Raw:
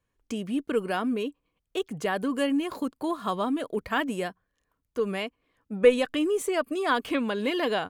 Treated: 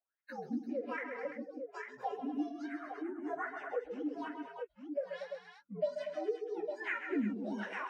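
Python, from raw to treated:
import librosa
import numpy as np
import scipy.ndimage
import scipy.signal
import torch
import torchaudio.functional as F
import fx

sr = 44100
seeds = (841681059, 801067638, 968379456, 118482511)

y = fx.partial_stretch(x, sr, pct=127)
y = fx.noise_reduce_blind(y, sr, reduce_db=22)
y = fx.wah_lfo(y, sr, hz=1.2, low_hz=200.0, high_hz=2000.0, q=7.8)
y = fx.echo_multitap(y, sr, ms=(47, 131, 152, 233, 340, 851), db=(-13.0, -9.5, -17.5, -12.5, -12.5, -13.0))
y = fx.band_squash(y, sr, depth_pct=70)
y = y * librosa.db_to_amplitude(4.0)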